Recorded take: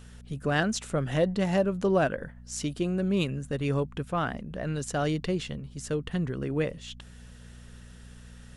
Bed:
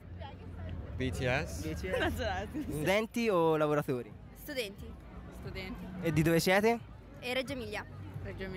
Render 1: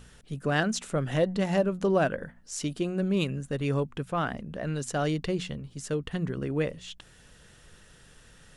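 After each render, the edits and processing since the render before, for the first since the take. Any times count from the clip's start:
hum removal 60 Hz, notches 4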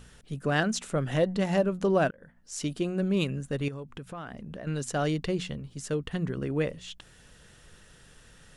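0:02.11–0:02.65: fade in
0:03.68–0:04.67: downward compressor, threshold −36 dBFS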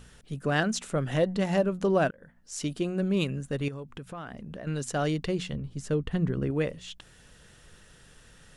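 0:05.53–0:06.51: spectral tilt −1.5 dB per octave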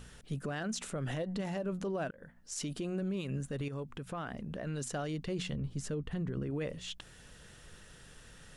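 downward compressor, threshold −27 dBFS, peak gain reduction 8 dB
brickwall limiter −28.5 dBFS, peak gain reduction 10 dB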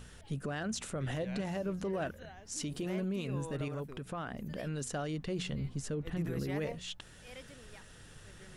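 mix in bed −16.5 dB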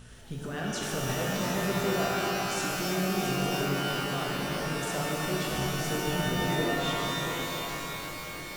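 on a send: echo machine with several playback heads 339 ms, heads first and second, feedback 49%, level −10 dB
on the sum: reverb with rising layers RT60 3 s, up +12 semitones, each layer −2 dB, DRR −2.5 dB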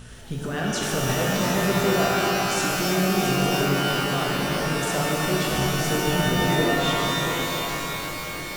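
level +7 dB

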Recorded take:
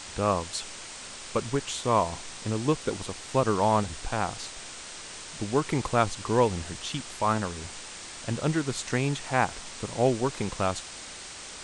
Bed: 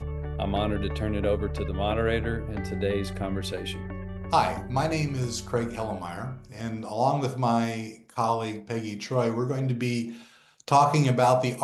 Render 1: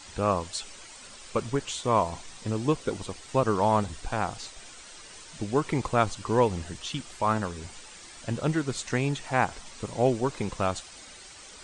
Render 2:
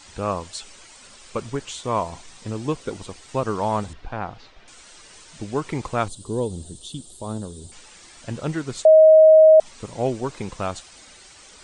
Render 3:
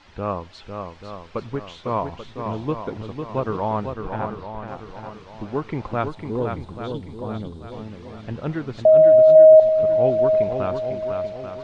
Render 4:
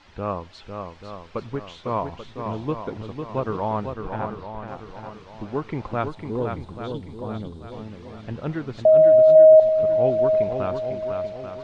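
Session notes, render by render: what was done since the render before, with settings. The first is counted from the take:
broadband denoise 9 dB, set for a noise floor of −42 dBFS
0:03.93–0:04.68: high-frequency loss of the air 260 metres; 0:06.08–0:07.72: drawn EQ curve 410 Hz 0 dB, 2,300 Hz −25 dB, 3,600 Hz +1 dB, 5,700 Hz −8 dB, 9,500 Hz +10 dB; 0:08.85–0:09.60: beep over 630 Hz −7 dBFS
high-frequency loss of the air 270 metres; on a send: feedback echo with a long and a short gap by turns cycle 836 ms, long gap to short 1.5 to 1, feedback 37%, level −6 dB
level −1.5 dB

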